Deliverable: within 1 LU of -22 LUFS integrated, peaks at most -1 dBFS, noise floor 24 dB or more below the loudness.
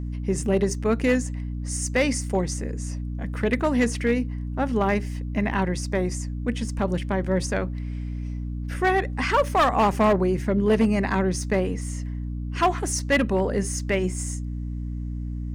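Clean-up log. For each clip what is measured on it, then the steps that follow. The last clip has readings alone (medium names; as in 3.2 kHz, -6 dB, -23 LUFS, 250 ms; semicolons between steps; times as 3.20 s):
clipped samples 0.9%; clipping level -14.0 dBFS; hum 60 Hz; highest harmonic 300 Hz; hum level -28 dBFS; loudness -25.0 LUFS; peak level -14.0 dBFS; loudness target -22.0 LUFS
-> clip repair -14 dBFS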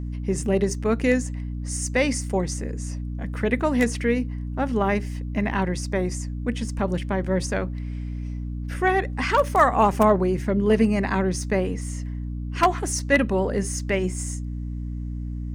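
clipped samples 0.0%; hum 60 Hz; highest harmonic 300 Hz; hum level -27 dBFS
-> de-hum 60 Hz, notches 5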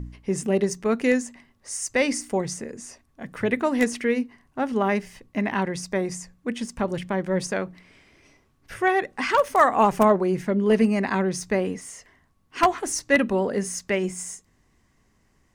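hum not found; loudness -24.0 LUFS; peak level -4.5 dBFS; loudness target -22.0 LUFS
-> trim +2 dB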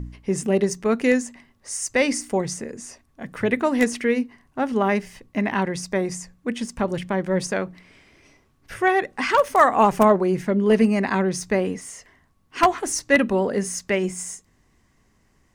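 loudness -22.0 LUFS; peak level -2.5 dBFS; noise floor -63 dBFS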